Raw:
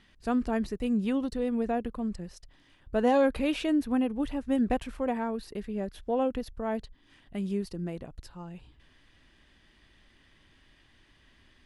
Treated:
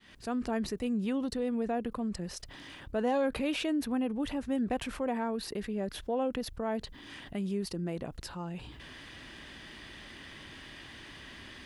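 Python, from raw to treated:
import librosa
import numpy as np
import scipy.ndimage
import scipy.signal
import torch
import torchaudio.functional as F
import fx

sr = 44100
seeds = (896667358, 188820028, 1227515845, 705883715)

y = fx.fade_in_head(x, sr, length_s=0.5)
y = fx.highpass(y, sr, hz=120.0, slope=6)
y = fx.env_flatten(y, sr, amount_pct=50)
y = y * 10.0 ** (-6.0 / 20.0)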